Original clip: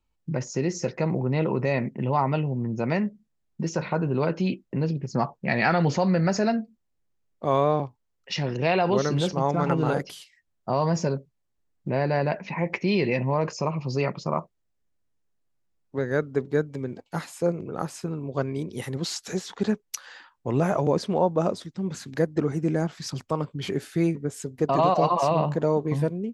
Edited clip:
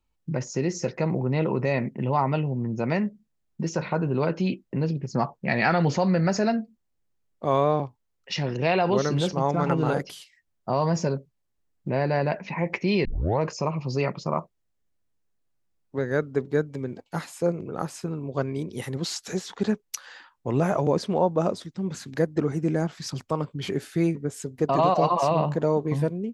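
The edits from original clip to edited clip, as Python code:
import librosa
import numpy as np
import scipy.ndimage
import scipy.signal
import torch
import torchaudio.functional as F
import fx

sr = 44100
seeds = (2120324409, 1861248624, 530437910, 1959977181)

y = fx.edit(x, sr, fx.tape_start(start_s=13.05, length_s=0.35), tone=tone)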